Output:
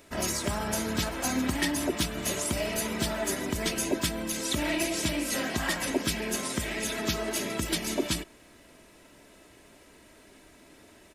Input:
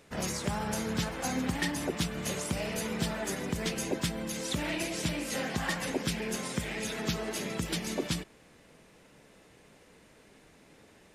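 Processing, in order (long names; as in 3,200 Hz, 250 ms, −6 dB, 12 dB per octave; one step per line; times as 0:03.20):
high-shelf EQ 11,000 Hz +8.5 dB
comb filter 3.1 ms, depth 49%
level +2.5 dB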